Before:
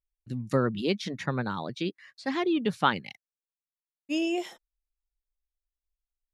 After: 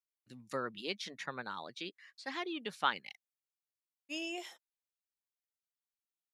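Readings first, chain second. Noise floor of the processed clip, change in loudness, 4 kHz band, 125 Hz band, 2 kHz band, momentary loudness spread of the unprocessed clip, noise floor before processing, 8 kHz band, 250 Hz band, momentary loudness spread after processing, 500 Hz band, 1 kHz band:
under -85 dBFS, -10.0 dB, -5.0 dB, -22.5 dB, -6.0 dB, 11 LU, under -85 dBFS, -4.5 dB, -16.5 dB, 17 LU, -13.0 dB, -8.0 dB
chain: high-pass 1.1 kHz 6 dB/octave; trim -4.5 dB

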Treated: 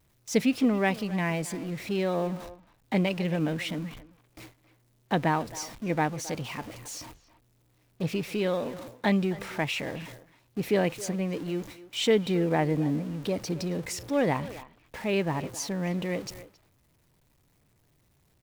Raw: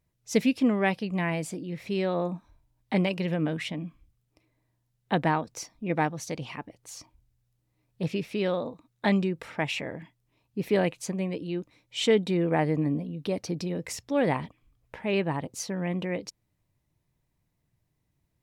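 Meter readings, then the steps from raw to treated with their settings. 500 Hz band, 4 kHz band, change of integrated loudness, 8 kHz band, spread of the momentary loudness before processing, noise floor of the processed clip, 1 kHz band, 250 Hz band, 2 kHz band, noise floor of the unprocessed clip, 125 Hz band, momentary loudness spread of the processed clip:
0.0 dB, +0.5 dB, -0.5 dB, +2.0 dB, 14 LU, -67 dBFS, 0.0 dB, 0.0 dB, 0.0 dB, -76 dBFS, 0.0 dB, 14 LU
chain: jump at every zero crossing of -38.5 dBFS; gate with hold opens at -39 dBFS; speakerphone echo 270 ms, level -15 dB; trim -1 dB

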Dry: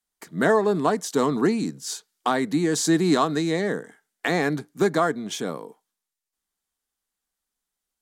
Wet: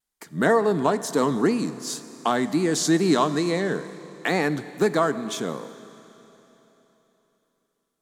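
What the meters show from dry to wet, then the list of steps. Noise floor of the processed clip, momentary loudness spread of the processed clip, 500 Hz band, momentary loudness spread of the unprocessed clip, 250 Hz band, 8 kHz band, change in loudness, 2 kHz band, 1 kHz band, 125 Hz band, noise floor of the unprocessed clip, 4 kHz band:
-77 dBFS, 12 LU, +0.5 dB, 12 LU, 0.0 dB, 0.0 dB, 0.0 dB, 0.0 dB, 0.0 dB, 0.0 dB, -85 dBFS, +0.5 dB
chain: wow and flutter 96 cents; Schroeder reverb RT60 3.6 s, combs from 28 ms, DRR 13.5 dB

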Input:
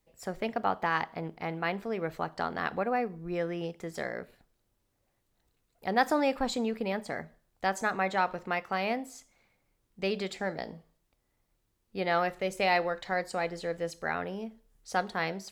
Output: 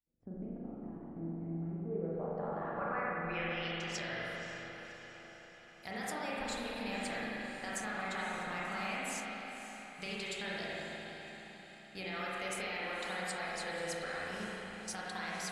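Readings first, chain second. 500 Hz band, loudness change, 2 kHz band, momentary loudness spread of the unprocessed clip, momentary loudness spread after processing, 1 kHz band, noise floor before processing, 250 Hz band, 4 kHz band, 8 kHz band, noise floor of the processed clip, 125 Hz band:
-9.0 dB, -7.5 dB, -4.5 dB, 12 LU, 11 LU, -9.5 dB, -77 dBFS, -6.5 dB, -2.0 dB, +2.0 dB, -55 dBFS, -3.0 dB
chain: gate -53 dBFS, range -16 dB; amplifier tone stack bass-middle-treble 5-5-5; peak limiter -35.5 dBFS, peak gain reduction 11.5 dB; compression, threshold -51 dBFS, peak gain reduction 10 dB; low-pass sweep 290 Hz -> 10 kHz, 1.70–4.32 s; on a send: echo that smears into a reverb 550 ms, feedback 59%, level -11.5 dB; on the sum: spring tank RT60 3.4 s, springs 33/42 ms, chirp 55 ms, DRR -7.5 dB; trim +8.5 dB

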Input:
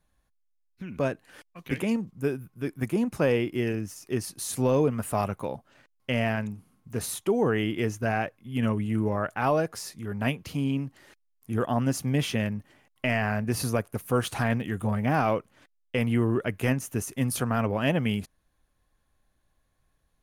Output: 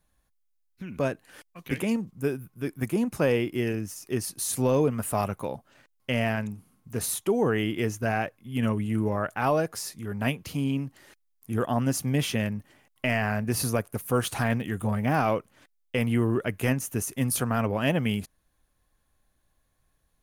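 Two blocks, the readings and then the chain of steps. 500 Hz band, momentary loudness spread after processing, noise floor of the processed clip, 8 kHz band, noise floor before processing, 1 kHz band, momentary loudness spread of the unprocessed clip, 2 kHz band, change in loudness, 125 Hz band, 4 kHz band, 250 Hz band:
0.0 dB, 10 LU, -71 dBFS, +3.5 dB, -72 dBFS, 0.0 dB, 10 LU, +0.5 dB, +0.5 dB, 0.0 dB, +1.0 dB, 0.0 dB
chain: treble shelf 7.6 kHz +6.5 dB

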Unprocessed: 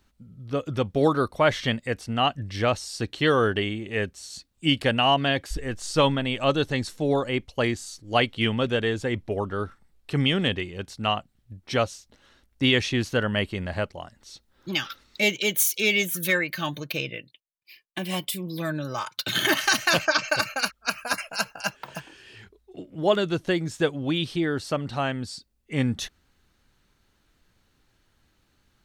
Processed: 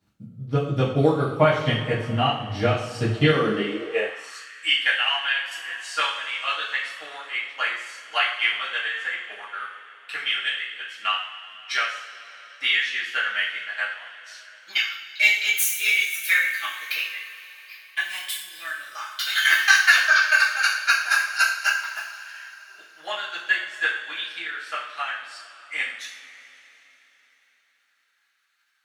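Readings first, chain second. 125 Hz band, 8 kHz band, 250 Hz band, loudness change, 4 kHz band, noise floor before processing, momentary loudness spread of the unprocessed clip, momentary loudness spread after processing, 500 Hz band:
-0.5 dB, +0.5 dB, -5.0 dB, +2.5 dB, +2.0 dB, -68 dBFS, 12 LU, 18 LU, -3.0 dB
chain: transient shaper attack +9 dB, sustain -5 dB; two-slope reverb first 0.54 s, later 3.9 s, from -18 dB, DRR -9.5 dB; high-pass sweep 120 Hz -> 1.6 kHz, 3.27–4.51 s; trim -13 dB

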